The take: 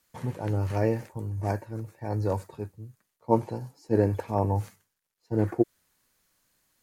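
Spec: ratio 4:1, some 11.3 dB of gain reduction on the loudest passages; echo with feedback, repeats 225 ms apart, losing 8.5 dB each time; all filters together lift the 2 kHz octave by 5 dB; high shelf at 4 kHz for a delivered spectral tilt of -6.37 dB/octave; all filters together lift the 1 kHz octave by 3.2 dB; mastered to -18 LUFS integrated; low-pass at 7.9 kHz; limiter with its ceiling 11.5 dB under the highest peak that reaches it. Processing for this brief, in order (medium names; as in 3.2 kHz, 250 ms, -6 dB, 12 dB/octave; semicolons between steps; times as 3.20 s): low-pass 7.9 kHz; peaking EQ 1 kHz +3 dB; peaking EQ 2 kHz +4.5 dB; treble shelf 4 kHz +4 dB; compression 4:1, threshold -29 dBFS; peak limiter -28.5 dBFS; feedback delay 225 ms, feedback 38%, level -8.5 dB; trim +21.5 dB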